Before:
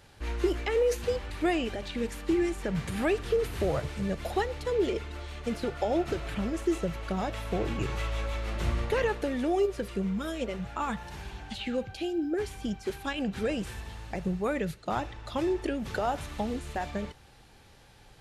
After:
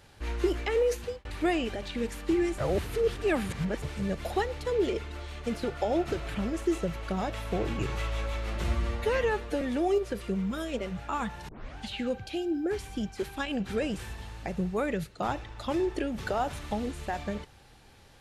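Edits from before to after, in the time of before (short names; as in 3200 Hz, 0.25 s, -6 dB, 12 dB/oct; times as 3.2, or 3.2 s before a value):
0.75–1.25 fade out equal-power
2.58–3.82 reverse
8.64–9.29 stretch 1.5×
11.16 tape start 0.29 s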